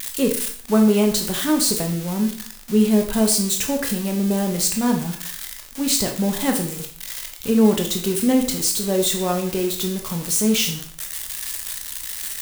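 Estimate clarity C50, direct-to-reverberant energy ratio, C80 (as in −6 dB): 8.5 dB, 3.0 dB, 12.5 dB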